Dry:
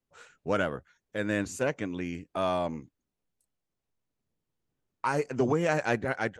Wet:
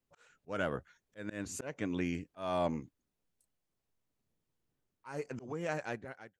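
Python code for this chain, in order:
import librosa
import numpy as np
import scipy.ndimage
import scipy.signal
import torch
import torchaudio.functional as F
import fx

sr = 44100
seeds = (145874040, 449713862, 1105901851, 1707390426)

y = fx.fade_out_tail(x, sr, length_s=1.91)
y = fx.auto_swell(y, sr, attack_ms=317.0)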